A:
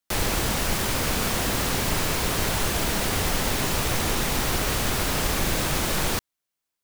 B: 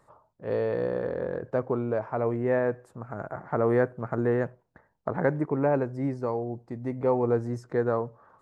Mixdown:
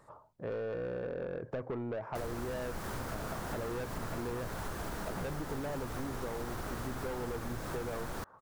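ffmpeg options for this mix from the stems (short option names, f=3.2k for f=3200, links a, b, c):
-filter_complex "[0:a]highshelf=f=1.9k:t=q:w=1.5:g=-7.5,adelay=2050,volume=-5.5dB[a];[1:a]asoftclip=type=tanh:threshold=-26.5dB,volume=2dB[b];[a][b]amix=inputs=2:normalize=0,acompressor=threshold=-36dB:ratio=5"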